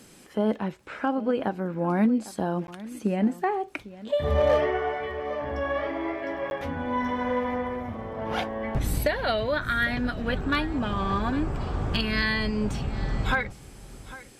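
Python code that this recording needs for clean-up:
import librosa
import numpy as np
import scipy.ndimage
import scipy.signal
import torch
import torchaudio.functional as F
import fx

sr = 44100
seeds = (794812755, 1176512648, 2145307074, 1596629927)

y = fx.fix_declip(x, sr, threshold_db=-15.0)
y = fx.fix_declick_ar(y, sr, threshold=6.5)
y = fx.fix_interpolate(y, sr, at_s=(2.67, 6.5), length_ms=11.0)
y = fx.fix_echo_inverse(y, sr, delay_ms=802, level_db=-17.5)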